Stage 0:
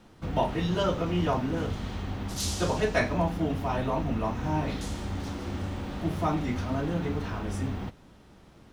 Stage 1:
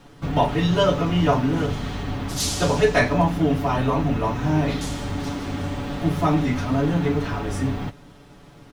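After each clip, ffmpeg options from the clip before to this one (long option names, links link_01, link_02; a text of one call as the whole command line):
ffmpeg -i in.wav -af "aecho=1:1:7:0.65,volume=6dB" out.wav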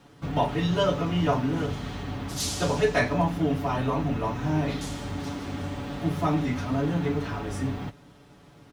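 ffmpeg -i in.wav -af "highpass=47,volume=-5dB" out.wav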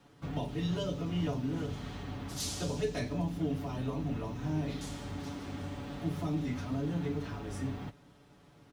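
ffmpeg -i in.wav -filter_complex "[0:a]acrossover=split=480|3000[link_01][link_02][link_03];[link_02]acompressor=threshold=-39dB:ratio=6[link_04];[link_01][link_04][link_03]amix=inputs=3:normalize=0,volume=-7dB" out.wav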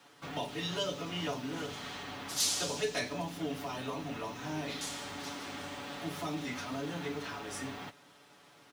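ffmpeg -i in.wav -af "highpass=frequency=1100:poles=1,volume=8dB" out.wav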